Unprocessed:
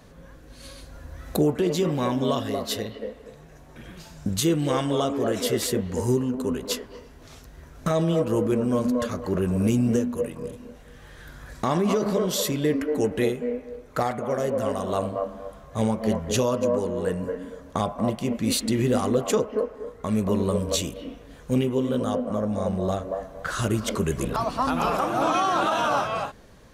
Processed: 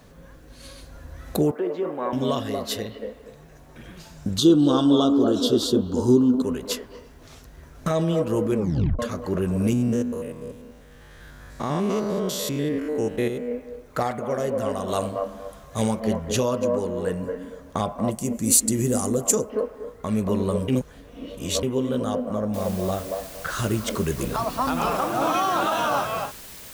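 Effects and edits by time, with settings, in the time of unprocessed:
1.51–2.13 Butterworth band-pass 760 Hz, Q 0.59
4.38–6.42 EQ curve 180 Hz 0 dB, 280 Hz +11 dB, 500 Hz 0 dB, 1400 Hz +2 dB, 2100 Hz -29 dB, 3400 Hz +8 dB, 10000 Hz -8 dB
8.57 tape stop 0.42 s
9.73–13.52 stepped spectrum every 0.1 s
14.88–16 high shelf 3000 Hz +9.5 dB
18.11–19.5 EQ curve 230 Hz 0 dB, 3600 Hz -8 dB, 7300 Hz +14 dB, 13000 Hz +11 dB
20.68–21.63 reverse
22.54 noise floor step -70 dB -42 dB

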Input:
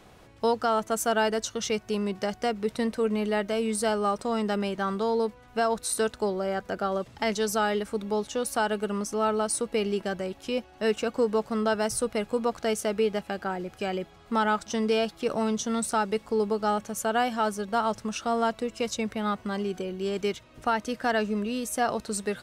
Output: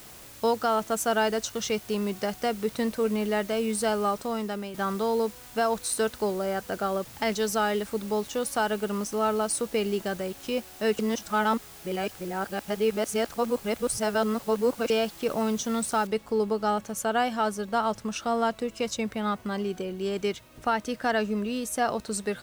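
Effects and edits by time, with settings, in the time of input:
4.06–4.74 fade out, to -8.5 dB
10.99–14.9 reverse
16.07 noise floor step -48 dB -62 dB

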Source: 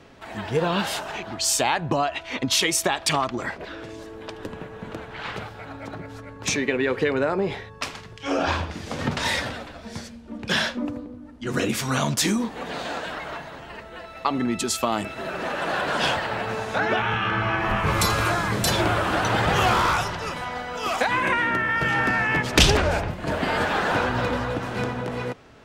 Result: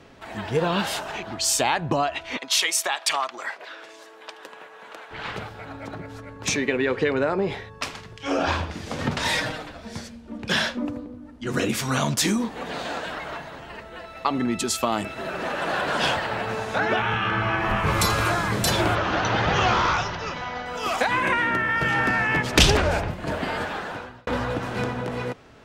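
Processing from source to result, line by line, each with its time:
2.37–5.11 HPF 740 Hz
6.83–7.48 LPF 8200 Hz
9.29–9.7 comb 6.4 ms
18.95–20.66 elliptic low-pass 6300 Hz, stop band 50 dB
23.1–24.27 fade out

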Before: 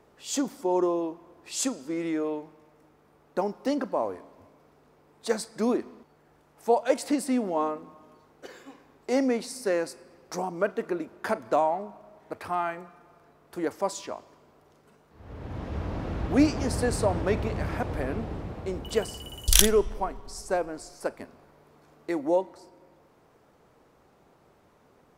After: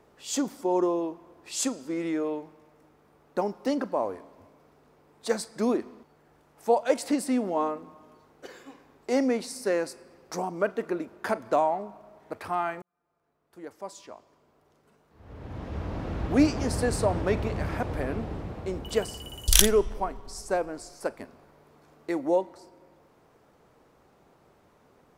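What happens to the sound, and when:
12.82–16.29 fade in

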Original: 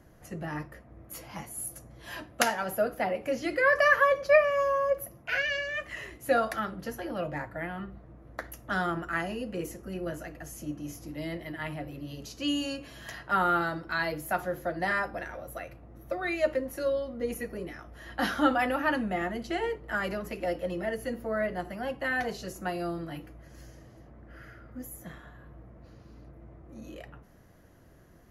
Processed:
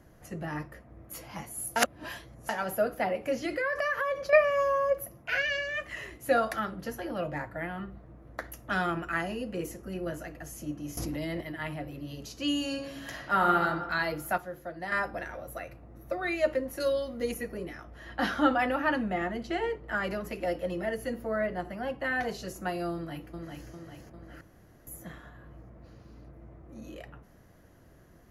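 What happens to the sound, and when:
1.76–2.49 reverse
3.43–4.33 compressor, threshold -26 dBFS
8.69–9.12 bell 2500 Hz +14 dB 0.22 oct
10.97–11.41 fast leveller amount 100%
12.66–13.63 reverb throw, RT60 1.4 s, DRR 3.5 dB
14.38–14.92 gain -7.5 dB
15.53–16.18 notch 3200 Hz
16.8–17.32 high shelf 3000 Hz +12 dB
17.85–20.11 high shelf 8400 Hz -10.5 dB
21.36–22.23 high shelf 4300 Hz -6 dB
22.93–23.69 echo throw 0.4 s, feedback 55%, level -4 dB
24.41–24.87 room tone

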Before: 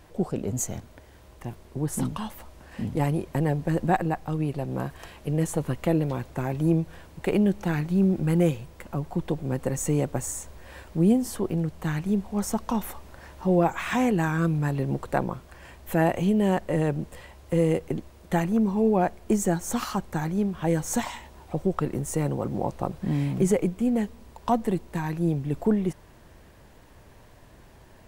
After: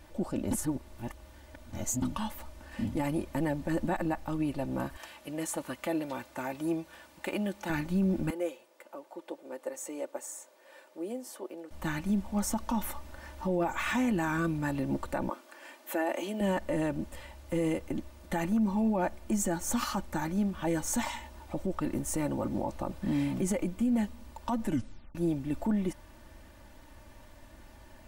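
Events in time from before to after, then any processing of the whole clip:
0.51–2.02 reverse
4.97–7.7 HPF 520 Hz 6 dB/oct
8.3–11.71 ladder high-pass 370 Hz, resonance 45%
15.29–16.41 steep high-pass 270 Hz
24.64 tape stop 0.51 s
whole clip: bell 420 Hz -5.5 dB 0.62 oct; comb 3.4 ms, depth 62%; limiter -19.5 dBFS; gain -2 dB

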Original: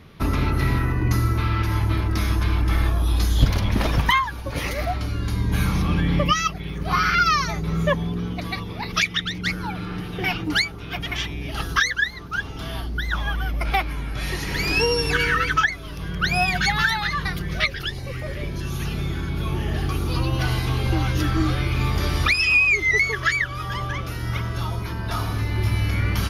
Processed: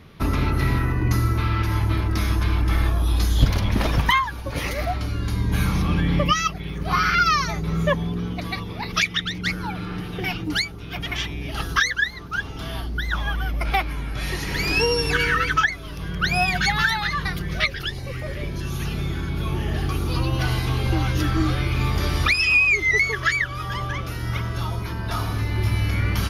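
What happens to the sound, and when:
10.2–10.96 bell 1200 Hz -4.5 dB 2.8 oct

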